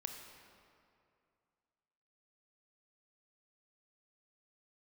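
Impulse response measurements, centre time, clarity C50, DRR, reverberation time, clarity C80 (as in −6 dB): 55 ms, 5.0 dB, 4.0 dB, 2.4 s, 6.0 dB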